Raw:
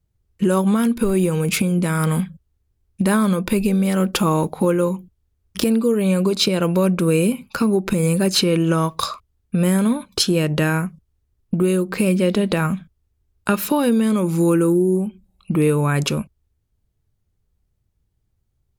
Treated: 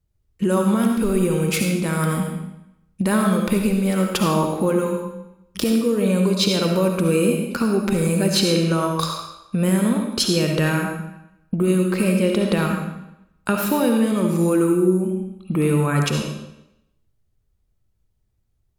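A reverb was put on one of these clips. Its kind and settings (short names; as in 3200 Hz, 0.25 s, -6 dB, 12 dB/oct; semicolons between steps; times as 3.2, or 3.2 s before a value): digital reverb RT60 0.85 s, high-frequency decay 0.95×, pre-delay 30 ms, DRR 2 dB; gain -2.5 dB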